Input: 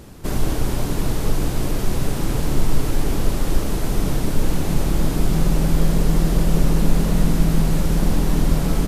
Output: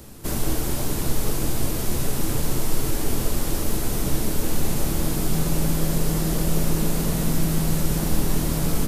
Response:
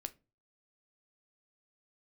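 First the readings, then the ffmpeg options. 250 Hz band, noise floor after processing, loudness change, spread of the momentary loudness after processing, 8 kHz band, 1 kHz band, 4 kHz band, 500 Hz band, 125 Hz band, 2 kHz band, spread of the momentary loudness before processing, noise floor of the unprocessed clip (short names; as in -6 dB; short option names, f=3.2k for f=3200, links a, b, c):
-3.5 dB, -26 dBFS, -3.0 dB, 3 LU, +4.0 dB, -3.0 dB, 0.0 dB, -2.5 dB, -4.5 dB, -2.0 dB, 5 LU, -24 dBFS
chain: -filter_complex "[0:a]highshelf=f=6.3k:g=11,acrossover=split=220|1000|2300[a][b][c][d];[a]alimiter=limit=-14dB:level=0:latency=1[e];[e][b][c][d]amix=inputs=4:normalize=0[f];[1:a]atrim=start_sample=2205[g];[f][g]afir=irnorm=-1:irlink=0"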